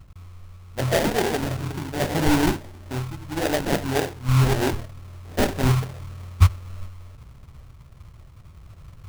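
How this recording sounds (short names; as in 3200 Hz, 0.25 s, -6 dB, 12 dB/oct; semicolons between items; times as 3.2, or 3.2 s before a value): phasing stages 4, 1.8 Hz, lowest notch 370–1200 Hz; random-step tremolo; aliases and images of a low sample rate 1200 Hz, jitter 20%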